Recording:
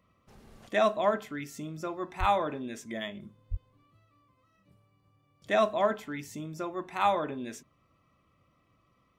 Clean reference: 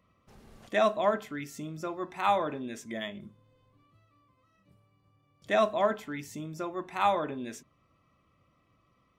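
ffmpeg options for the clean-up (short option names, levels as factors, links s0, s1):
-filter_complex "[0:a]asplit=3[s0][s1][s2];[s0]afade=t=out:st=2.19:d=0.02[s3];[s1]highpass=f=140:w=0.5412,highpass=f=140:w=1.3066,afade=t=in:st=2.19:d=0.02,afade=t=out:st=2.31:d=0.02[s4];[s2]afade=t=in:st=2.31:d=0.02[s5];[s3][s4][s5]amix=inputs=3:normalize=0,asplit=3[s6][s7][s8];[s6]afade=t=out:st=3.5:d=0.02[s9];[s7]highpass=f=140:w=0.5412,highpass=f=140:w=1.3066,afade=t=in:st=3.5:d=0.02,afade=t=out:st=3.62:d=0.02[s10];[s8]afade=t=in:st=3.62:d=0.02[s11];[s9][s10][s11]amix=inputs=3:normalize=0"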